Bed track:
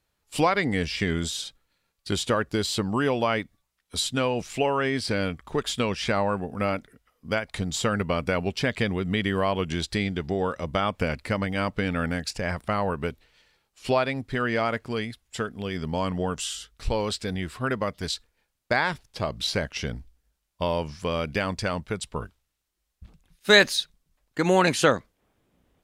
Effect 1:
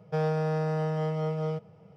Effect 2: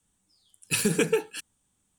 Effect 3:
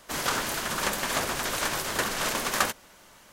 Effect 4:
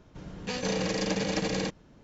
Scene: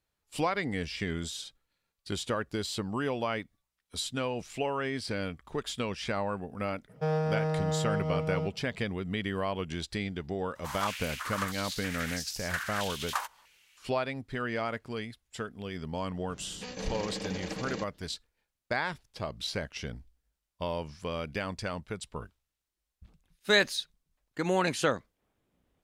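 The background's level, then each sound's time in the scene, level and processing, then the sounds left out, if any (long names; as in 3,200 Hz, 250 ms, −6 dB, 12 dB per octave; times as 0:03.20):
bed track −7.5 dB
0:06.89: mix in 1 −1.5 dB
0:10.55: mix in 3 −12 dB + high-pass on a step sequencer 3.1 Hz 940–5,200 Hz
0:16.14: mix in 4 −8.5 dB
not used: 2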